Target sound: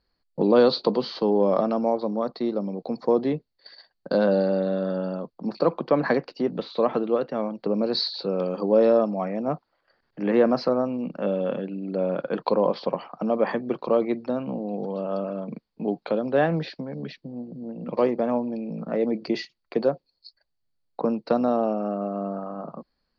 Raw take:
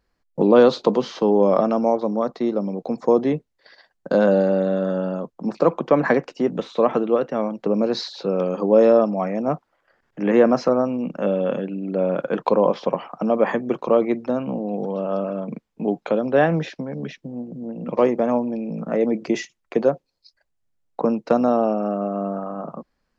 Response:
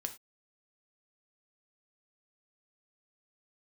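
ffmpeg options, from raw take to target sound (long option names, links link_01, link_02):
-af "lowpass=frequency=4500:width_type=q:width=11,aemphasis=mode=reproduction:type=75fm,aeval=exprs='0.841*(cos(1*acos(clip(val(0)/0.841,-1,1)))-cos(1*PI/2))+0.00473*(cos(5*acos(clip(val(0)/0.841,-1,1)))-cos(5*PI/2))':channel_layout=same,volume=-5dB"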